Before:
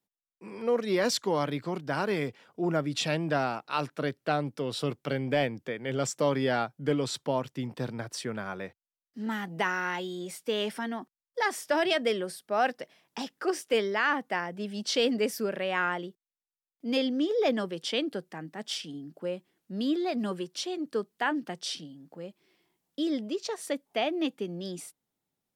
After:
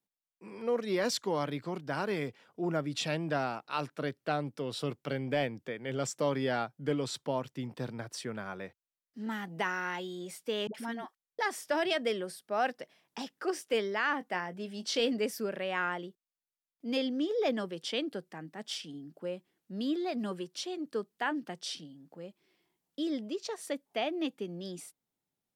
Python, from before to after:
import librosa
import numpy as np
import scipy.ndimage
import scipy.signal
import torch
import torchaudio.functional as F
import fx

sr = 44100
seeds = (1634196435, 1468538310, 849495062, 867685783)

y = fx.dispersion(x, sr, late='highs', ms=74.0, hz=430.0, at=(10.67, 11.39))
y = fx.doubler(y, sr, ms=22.0, db=-12, at=(14.18, 15.13))
y = F.gain(torch.from_numpy(y), -4.0).numpy()